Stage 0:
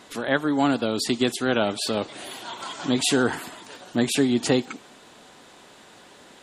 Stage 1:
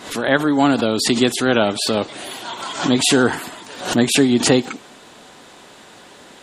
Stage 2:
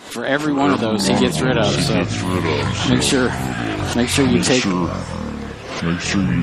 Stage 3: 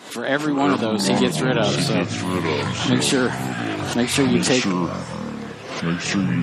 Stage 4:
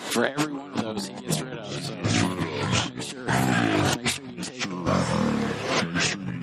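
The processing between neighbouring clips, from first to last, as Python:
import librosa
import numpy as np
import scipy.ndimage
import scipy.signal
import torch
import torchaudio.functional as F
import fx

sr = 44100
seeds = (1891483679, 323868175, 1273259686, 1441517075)

y1 = fx.pre_swell(x, sr, db_per_s=100.0)
y1 = y1 * librosa.db_to_amplitude(6.0)
y2 = fx.echo_pitch(y1, sr, ms=233, semitones=-6, count=3, db_per_echo=-3.0)
y2 = y2 * librosa.db_to_amplitude(-2.0)
y3 = scipy.signal.sosfilt(scipy.signal.butter(4, 110.0, 'highpass', fs=sr, output='sos'), y2)
y3 = y3 * librosa.db_to_amplitude(-2.5)
y4 = fx.over_compress(y3, sr, threshold_db=-26.0, ratio=-0.5)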